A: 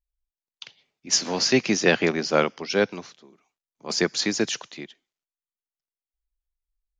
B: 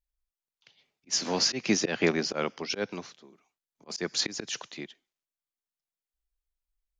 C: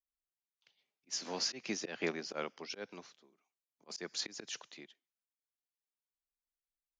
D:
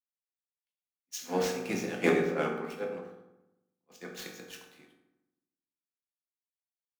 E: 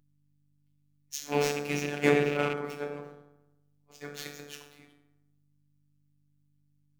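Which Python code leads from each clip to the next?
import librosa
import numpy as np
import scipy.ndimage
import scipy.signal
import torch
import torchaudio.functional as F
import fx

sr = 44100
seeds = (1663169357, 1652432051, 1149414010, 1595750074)

y1 = fx.auto_swell(x, sr, attack_ms=182.0)
y1 = y1 * librosa.db_to_amplitude(-2.0)
y2 = fx.low_shelf(y1, sr, hz=150.0, db=-11.5)
y2 = fx.am_noise(y2, sr, seeds[0], hz=5.7, depth_pct=55)
y2 = y2 * librosa.db_to_amplitude(-7.0)
y3 = scipy.ndimage.median_filter(y2, 9, mode='constant')
y3 = fx.rev_fdn(y3, sr, rt60_s=1.7, lf_ratio=1.5, hf_ratio=0.5, size_ms=12.0, drr_db=-2.5)
y3 = fx.band_widen(y3, sr, depth_pct=100)
y3 = y3 * librosa.db_to_amplitude(3.0)
y4 = fx.rattle_buzz(y3, sr, strikes_db=-38.0, level_db=-25.0)
y4 = fx.add_hum(y4, sr, base_hz=50, snr_db=33)
y4 = fx.robotise(y4, sr, hz=145.0)
y4 = y4 * librosa.db_to_amplitude(4.0)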